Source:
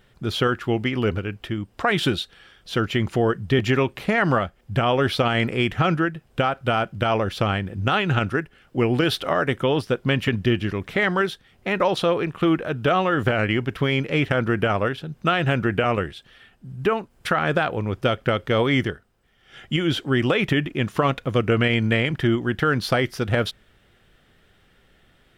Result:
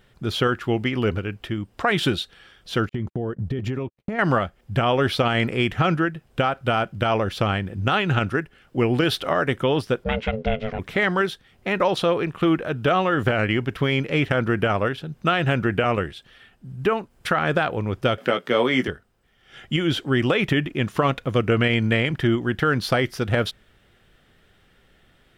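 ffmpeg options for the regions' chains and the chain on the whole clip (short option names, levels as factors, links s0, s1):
-filter_complex "[0:a]asettb=1/sr,asplit=3[s0][s1][s2];[s0]atrim=end=2.894[s3];[s1]atrim=start=2.89:end=4.19,asetpts=PTS-STARTPTS,afade=t=in:d=0.004:c=qsin,afade=t=out:st=1.296:d=0.004:c=qsin,tiltshelf=f=770:g=6.5,acompressor=threshold=0.0794:ratio=12:attack=3.2:release=140:knee=1:detection=peak,agate=range=0.00126:threshold=0.0251:ratio=16:release=100:detection=peak[s4];[s2]atrim=start=4.186[s5];[s3][s4]acrossfade=d=0.004:c1=hsin:c2=qsin[s6];[s6][s5]acrossfade=d=0.004:c1=qsin:c2=hsin,asettb=1/sr,asplit=3[s7][s8][s9];[s7]atrim=end=10.044[s10];[s8]atrim=start=10.04:end=10.79,asetpts=PTS-STARTPTS,afade=t=in:d=0.004:c=qsin,afade=t=out:st=0.746:d=0.004:c=qsin,lowpass=4100,bandreject=f=3200:w=22,aeval=exprs='val(0)*sin(2*PI*330*n/s)':c=same[s11];[s9]atrim=start=10.786[s12];[s10][s11]acrossfade=d=0.004:c1=hsin:c2=qsin[s13];[s13][s12]acrossfade=d=0.004:c1=qsin:c2=hsin,asettb=1/sr,asplit=3[s14][s15][s16];[s14]atrim=end=18.184[s17];[s15]atrim=start=18.18:end=18.88,asetpts=PTS-STARTPTS,afade=t=in:d=0.004:c=qsin,afade=t=out:st=0.696:d=0.004:c=qsin,highpass=f=180:w=0.5412,highpass=f=180:w=1.3066,asplit=2[s18][s19];[s19]adelay=16,volume=0.447[s20];[s18][s20]amix=inputs=2:normalize=0,atrim=end_sample=30870,acompressor=mode=upward:threshold=0.0251:ratio=2.5:attack=3.2:release=140:knee=2.83:detection=peak[s21];[s16]atrim=start=18.876[s22];[s17][s21]acrossfade=d=0.004:c1=hsin:c2=qsin[s23];[s23][s22]acrossfade=d=0.004:c1=qsin:c2=hsin"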